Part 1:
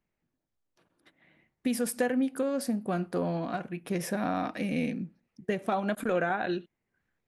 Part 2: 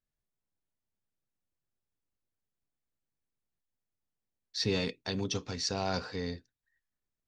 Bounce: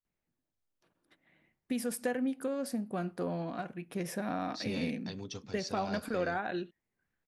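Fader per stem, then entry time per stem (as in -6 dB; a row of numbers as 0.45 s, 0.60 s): -5.0 dB, -9.0 dB; 0.05 s, 0.00 s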